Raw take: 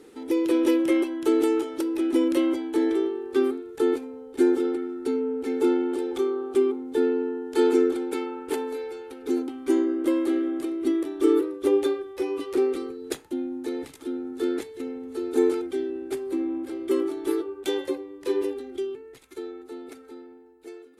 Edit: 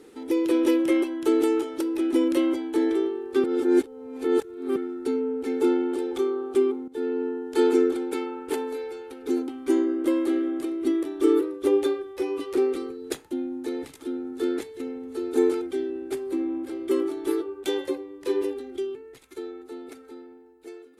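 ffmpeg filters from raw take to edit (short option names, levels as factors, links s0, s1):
-filter_complex "[0:a]asplit=4[s0][s1][s2][s3];[s0]atrim=end=3.442[s4];[s1]atrim=start=3.438:end=4.762,asetpts=PTS-STARTPTS,areverse[s5];[s2]atrim=start=4.758:end=6.88,asetpts=PTS-STARTPTS,afade=t=out:st=2.118:d=0.004:c=hsin:silence=0.177828[s6];[s3]atrim=start=6.88,asetpts=PTS-STARTPTS,afade=t=in:d=0.38:silence=0.177828[s7];[s4][s5]acrossfade=d=0.004:c1=hsin:c2=hsin[s8];[s6][s7]concat=n=2:v=0:a=1[s9];[s8][s9]acrossfade=d=0.004:c1=hsin:c2=hsin"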